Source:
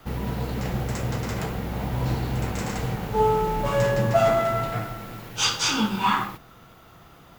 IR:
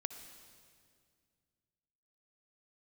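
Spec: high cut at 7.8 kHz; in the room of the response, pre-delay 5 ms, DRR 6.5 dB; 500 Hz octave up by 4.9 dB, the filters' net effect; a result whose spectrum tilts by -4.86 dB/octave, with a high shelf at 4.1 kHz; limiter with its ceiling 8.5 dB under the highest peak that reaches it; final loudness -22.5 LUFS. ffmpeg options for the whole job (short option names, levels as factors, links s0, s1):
-filter_complex "[0:a]lowpass=7800,equalizer=f=500:t=o:g=6.5,highshelf=f=4100:g=-5,alimiter=limit=0.2:level=0:latency=1,asplit=2[s0][s1];[1:a]atrim=start_sample=2205,adelay=5[s2];[s1][s2]afir=irnorm=-1:irlink=0,volume=0.562[s3];[s0][s3]amix=inputs=2:normalize=0,volume=1.26"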